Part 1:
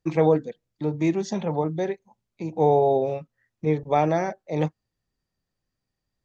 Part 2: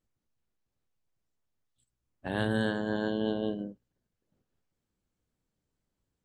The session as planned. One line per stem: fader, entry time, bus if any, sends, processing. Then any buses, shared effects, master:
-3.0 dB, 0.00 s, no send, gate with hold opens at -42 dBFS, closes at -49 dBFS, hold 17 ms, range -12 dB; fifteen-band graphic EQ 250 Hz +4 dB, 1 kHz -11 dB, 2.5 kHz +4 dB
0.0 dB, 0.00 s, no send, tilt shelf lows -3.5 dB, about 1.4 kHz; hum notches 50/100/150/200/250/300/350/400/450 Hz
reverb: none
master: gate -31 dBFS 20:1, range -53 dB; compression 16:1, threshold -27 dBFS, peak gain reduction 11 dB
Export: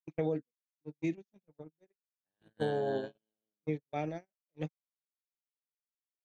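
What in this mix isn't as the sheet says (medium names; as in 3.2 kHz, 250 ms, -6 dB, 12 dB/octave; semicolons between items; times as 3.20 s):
stem 1 -3.0 dB -> -10.5 dB; stem 2 0.0 dB -> -6.5 dB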